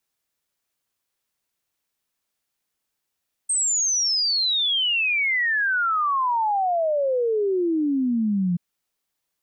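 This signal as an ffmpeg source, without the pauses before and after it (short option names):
-f lavfi -i "aevalsrc='0.112*clip(min(t,5.08-t)/0.01,0,1)*sin(2*PI*8500*5.08/log(170/8500)*(exp(log(170/8500)*t/5.08)-1))':d=5.08:s=44100"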